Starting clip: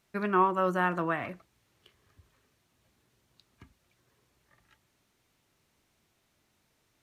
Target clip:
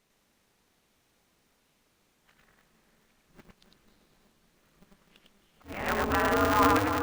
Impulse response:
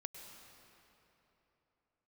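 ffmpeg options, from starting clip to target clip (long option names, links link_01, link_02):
-filter_complex "[0:a]areverse,asplit=2[link_01][link_02];[1:a]atrim=start_sample=2205,asetrate=27342,aresample=44100,adelay=102[link_03];[link_02][link_03]afir=irnorm=-1:irlink=0,volume=1dB[link_04];[link_01][link_04]amix=inputs=2:normalize=0,aeval=exprs='val(0)*sgn(sin(2*PI*100*n/s))':channel_layout=same"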